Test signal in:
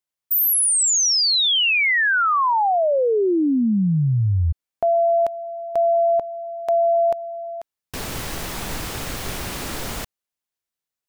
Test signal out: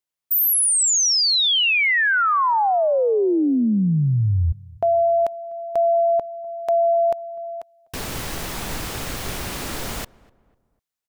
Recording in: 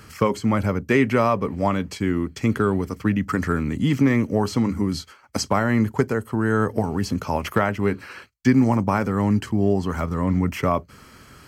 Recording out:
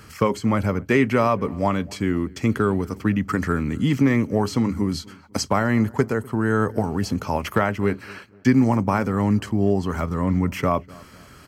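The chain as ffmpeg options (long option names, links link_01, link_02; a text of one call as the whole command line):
ffmpeg -i in.wav -filter_complex "[0:a]asplit=2[link_01][link_02];[link_02]adelay=249,lowpass=frequency=1400:poles=1,volume=-23dB,asplit=2[link_03][link_04];[link_04]adelay=249,lowpass=frequency=1400:poles=1,volume=0.43,asplit=2[link_05][link_06];[link_06]adelay=249,lowpass=frequency=1400:poles=1,volume=0.43[link_07];[link_01][link_03][link_05][link_07]amix=inputs=4:normalize=0" out.wav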